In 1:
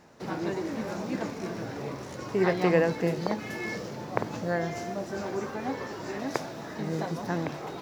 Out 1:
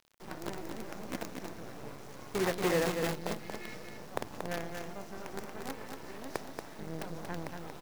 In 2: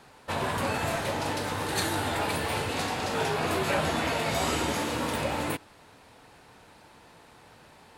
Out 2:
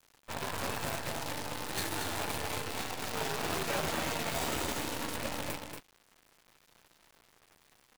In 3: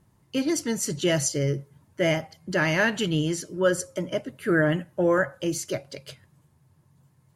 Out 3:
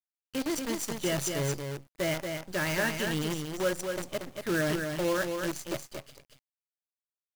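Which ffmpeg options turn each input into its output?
-af "acrusher=bits=5:dc=4:mix=0:aa=0.000001,aecho=1:1:232:0.531,volume=-7.5dB"

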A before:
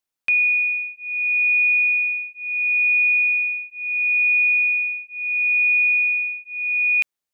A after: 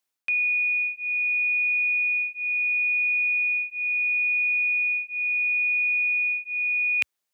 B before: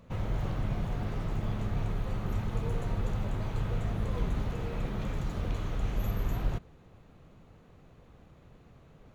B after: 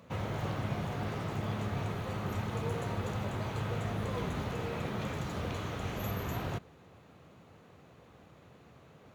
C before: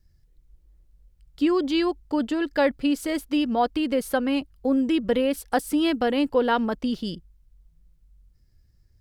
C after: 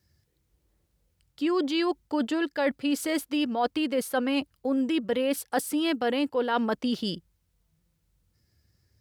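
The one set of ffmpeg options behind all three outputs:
-af "highpass=f=71:w=0.5412,highpass=f=71:w=1.3066,lowshelf=f=280:g=-7,areverse,acompressor=threshold=-27dB:ratio=6,areverse,volume=4dB"

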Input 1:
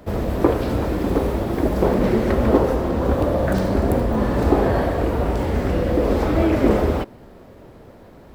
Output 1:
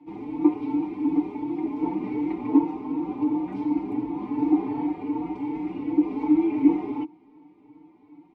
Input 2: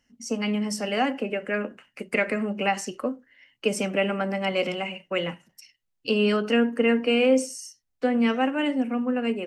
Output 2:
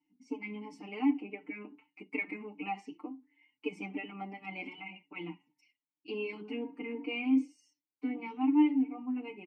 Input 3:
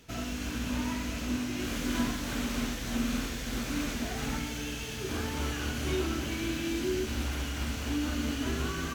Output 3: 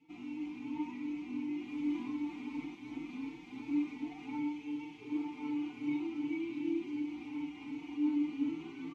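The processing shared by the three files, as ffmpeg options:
-filter_complex "[0:a]asplit=3[a][b][c];[a]bandpass=f=300:t=q:w=8,volume=0dB[d];[b]bandpass=f=870:t=q:w=8,volume=-6dB[e];[c]bandpass=f=2.24k:t=q:w=8,volume=-9dB[f];[d][e][f]amix=inputs=3:normalize=0,highshelf=f=11k:g=-5.5,aecho=1:1:6.7:0.87,asplit=2[g][h];[h]adelay=4,afreqshift=2.7[i];[g][i]amix=inputs=2:normalize=1,volume=2.5dB"

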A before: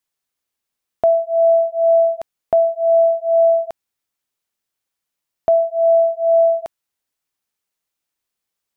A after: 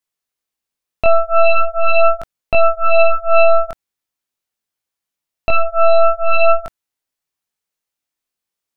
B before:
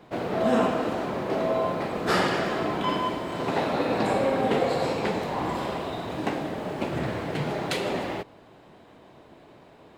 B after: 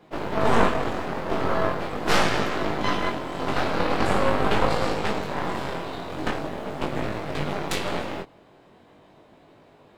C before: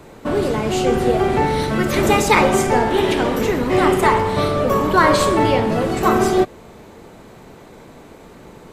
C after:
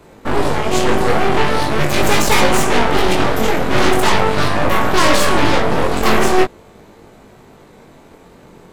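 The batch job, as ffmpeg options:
-af "apsyclip=6dB,aeval=exprs='1.06*(cos(1*acos(clip(val(0)/1.06,-1,1)))-cos(1*PI/2))+0.473*(cos(6*acos(clip(val(0)/1.06,-1,1)))-cos(6*PI/2))':c=same,flanger=delay=19:depth=3.8:speed=0.42,volume=-5dB"

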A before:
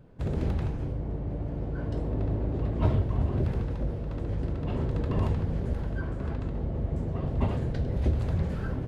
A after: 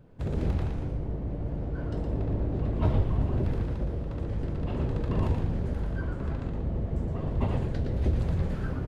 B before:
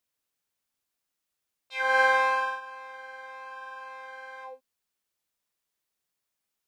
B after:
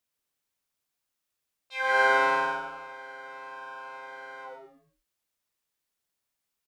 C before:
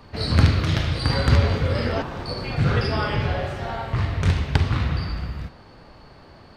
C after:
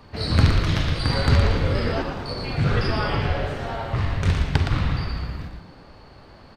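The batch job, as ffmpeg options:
-filter_complex "[0:a]asplit=5[a][b][c][d][e];[b]adelay=116,afreqshift=-120,volume=-5.5dB[f];[c]adelay=232,afreqshift=-240,volume=-15.7dB[g];[d]adelay=348,afreqshift=-360,volume=-25.8dB[h];[e]adelay=464,afreqshift=-480,volume=-36dB[i];[a][f][g][h][i]amix=inputs=5:normalize=0,volume=-1dB"

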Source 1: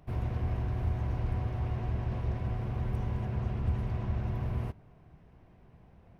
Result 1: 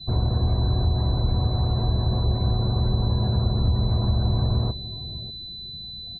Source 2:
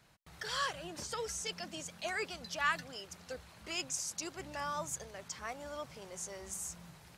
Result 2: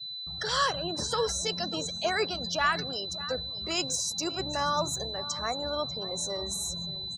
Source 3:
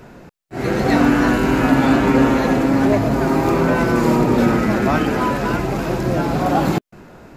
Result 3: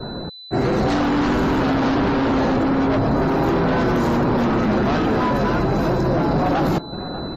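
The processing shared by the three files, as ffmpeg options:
-filter_complex "[0:a]aeval=exprs='val(0)+0.00562*sin(2*PI*4000*n/s)':c=same,asplit=2[a][b];[b]aeval=exprs='0.794*sin(PI/2*5.62*val(0)/0.794)':c=same,volume=-10dB[c];[a][c]amix=inputs=2:normalize=0,acompressor=threshold=-16dB:ratio=16,equalizer=f=2.3k:w=1.1:g=-7,aecho=1:1:592:0.178,acrossover=split=250|4800[d][e][f];[f]asoftclip=type=tanh:threshold=-26.5dB[g];[d][e][g]amix=inputs=3:normalize=0,adynamicequalizer=threshold=0.00447:dfrequency=8000:dqfactor=2.2:tfrequency=8000:tqfactor=2.2:attack=5:release=100:ratio=0.375:range=2:mode=cutabove:tftype=bell,afftdn=nr=26:nf=-42"

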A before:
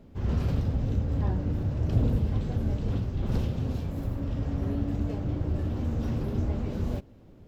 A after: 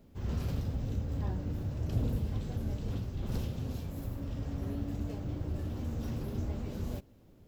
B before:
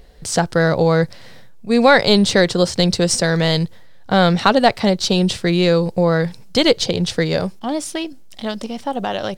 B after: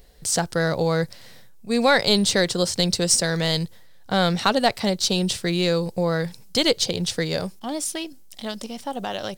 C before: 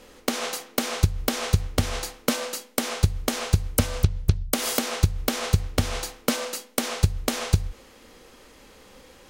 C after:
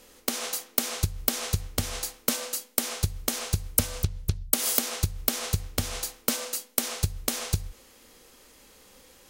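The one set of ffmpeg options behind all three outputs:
-af "crystalizer=i=2:c=0,volume=-7dB"

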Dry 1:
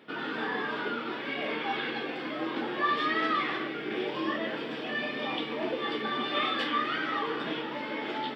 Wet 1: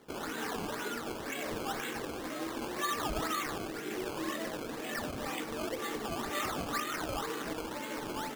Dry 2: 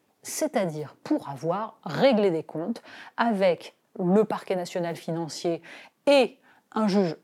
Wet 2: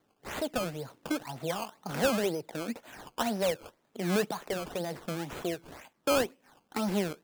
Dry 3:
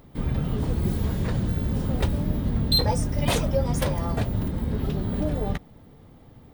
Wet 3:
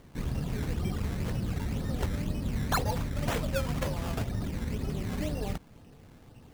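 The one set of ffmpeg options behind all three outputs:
-filter_complex "[0:a]asplit=2[a][b];[b]acompressor=threshold=-32dB:ratio=6,volume=-0.5dB[c];[a][c]amix=inputs=2:normalize=0,acrusher=samples=16:mix=1:aa=0.000001:lfo=1:lforange=16:lforate=2,volume=-9dB"

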